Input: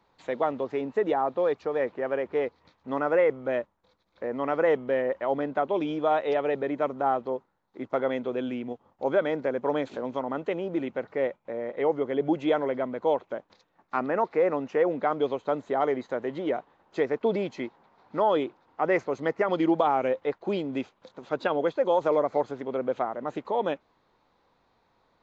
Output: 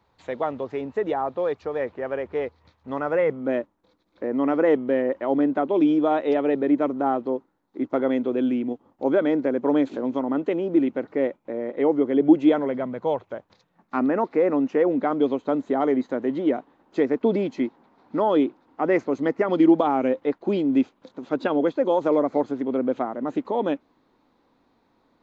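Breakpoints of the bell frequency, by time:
bell +12.5 dB 0.81 oct
3.02 s 83 Hz
3.5 s 290 Hz
12.44 s 290 Hz
13.36 s 89 Hz
14 s 270 Hz

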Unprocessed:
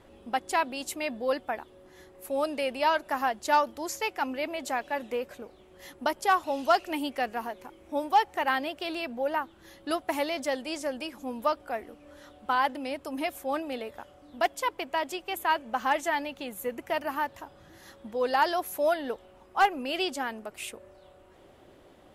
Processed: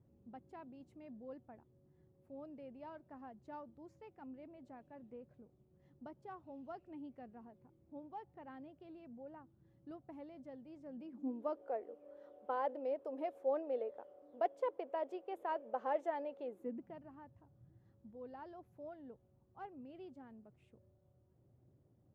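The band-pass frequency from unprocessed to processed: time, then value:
band-pass, Q 3.5
10.76 s 130 Hz
11.65 s 500 Hz
16.42 s 500 Hz
17.07 s 120 Hz

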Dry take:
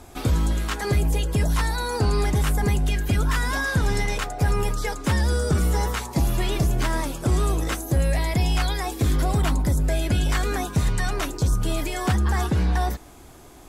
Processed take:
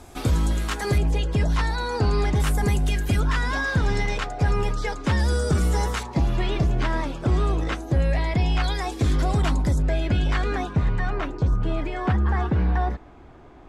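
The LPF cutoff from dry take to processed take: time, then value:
12000 Hz
from 0.98 s 5000 Hz
from 2.4 s 12000 Hz
from 3.2 s 5100 Hz
from 5.19 s 9400 Hz
from 6.03 s 3700 Hz
from 8.64 s 6600 Hz
from 9.82 s 3500 Hz
from 10.73 s 2100 Hz

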